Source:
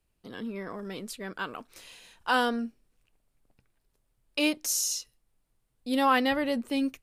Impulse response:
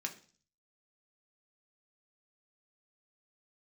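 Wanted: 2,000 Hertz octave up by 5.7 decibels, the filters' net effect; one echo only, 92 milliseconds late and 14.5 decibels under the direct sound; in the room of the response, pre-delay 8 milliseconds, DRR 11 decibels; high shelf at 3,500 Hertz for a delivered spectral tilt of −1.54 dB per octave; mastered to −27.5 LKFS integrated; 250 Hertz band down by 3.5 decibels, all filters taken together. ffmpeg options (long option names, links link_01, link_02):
-filter_complex "[0:a]equalizer=frequency=250:width_type=o:gain=-4,equalizer=frequency=2000:width_type=o:gain=5.5,highshelf=frequency=3500:gain=8,aecho=1:1:92:0.188,asplit=2[link_01][link_02];[1:a]atrim=start_sample=2205,adelay=8[link_03];[link_02][link_03]afir=irnorm=-1:irlink=0,volume=-11.5dB[link_04];[link_01][link_04]amix=inputs=2:normalize=0,volume=-3.5dB"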